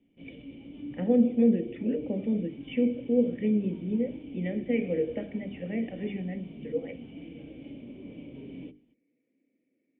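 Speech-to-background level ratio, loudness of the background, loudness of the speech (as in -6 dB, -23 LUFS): 15.0 dB, -44.5 LUFS, -29.5 LUFS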